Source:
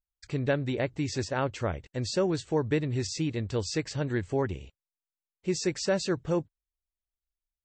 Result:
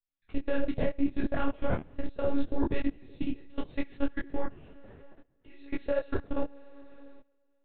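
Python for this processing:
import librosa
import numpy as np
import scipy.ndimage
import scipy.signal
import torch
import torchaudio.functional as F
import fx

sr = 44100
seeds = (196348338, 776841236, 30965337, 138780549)

y = fx.low_shelf(x, sr, hz=190.0, db=10.5, at=(0.55, 2.66))
y = fx.rev_double_slope(y, sr, seeds[0], early_s=0.48, late_s=3.4, knee_db=-18, drr_db=-3.5)
y = fx.lpc_monotone(y, sr, seeds[1], pitch_hz=280.0, order=10)
y = fx.level_steps(y, sr, step_db=24)
y = fx.low_shelf(y, sr, hz=430.0, db=3.0)
y = fx.detune_double(y, sr, cents=25)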